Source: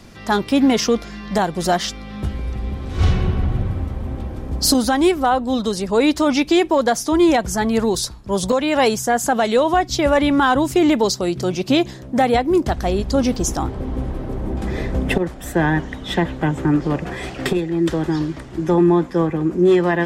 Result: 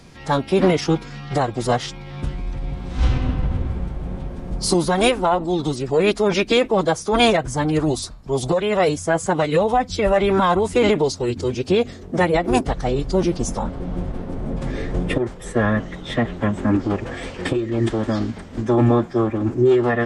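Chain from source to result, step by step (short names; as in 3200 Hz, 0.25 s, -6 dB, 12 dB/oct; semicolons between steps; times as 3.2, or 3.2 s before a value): formant-preserving pitch shift -6.5 st; dynamic EQ 5800 Hz, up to -5 dB, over -37 dBFS, Q 0.86; gain -1 dB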